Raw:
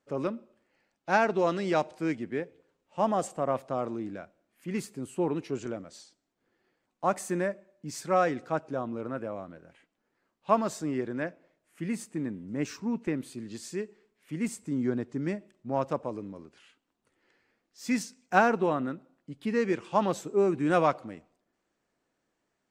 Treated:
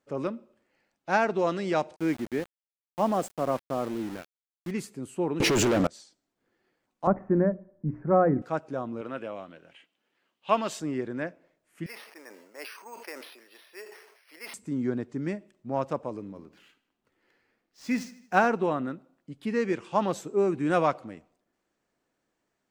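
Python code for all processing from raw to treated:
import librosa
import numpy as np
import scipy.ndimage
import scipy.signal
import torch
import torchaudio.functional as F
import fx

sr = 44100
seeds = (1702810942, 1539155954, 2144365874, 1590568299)

y = fx.chain(x, sr, fx.peak_eq(hz=270.0, db=3.5, octaves=1.1),
    fx.sample_gate(floor_db=-38.5), at=(1.96, 4.71))
y = fx.chain(y, sr, fx.leveller(passes=5),
    fx.env_flatten(amount_pct=100), at=(5.4, 5.87))
y = fx.chain(y, sr, fx.cheby2_lowpass(hz=3500.0, order=4, stop_db=40),
    fx.tilt_eq(slope=-4.5),
    fx.hum_notches(base_hz=60, count=5), at=(7.07, 8.42))
y = fx.chain(y, sr, fx.highpass(hz=230.0, slope=6),
    fx.peak_eq(hz=3000.0, db=13.5, octaves=0.72), at=(9.01, 10.8))
y = fx.chain(y, sr, fx.highpass(hz=570.0, slope=24),
    fx.resample_bad(factor=6, down='filtered', up='hold'),
    fx.sustainer(db_per_s=56.0), at=(11.86, 14.54))
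y = fx.chain(y, sr, fx.median_filter(points=5),
    fx.echo_feedback(ms=77, feedback_pct=51, wet_db=-17.5), at=(16.2, 18.46))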